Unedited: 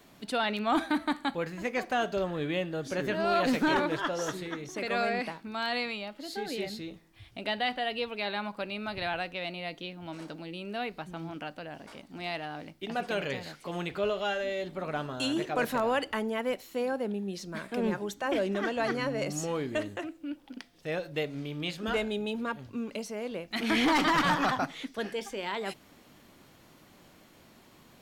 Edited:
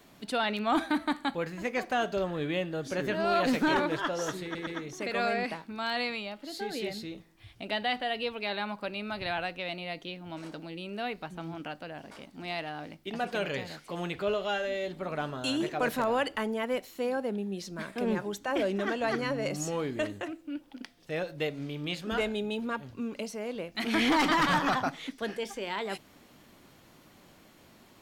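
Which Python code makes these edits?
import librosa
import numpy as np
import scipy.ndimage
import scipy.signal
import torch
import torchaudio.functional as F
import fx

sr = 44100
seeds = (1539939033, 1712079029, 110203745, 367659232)

y = fx.edit(x, sr, fx.stutter(start_s=4.43, slice_s=0.12, count=3), tone=tone)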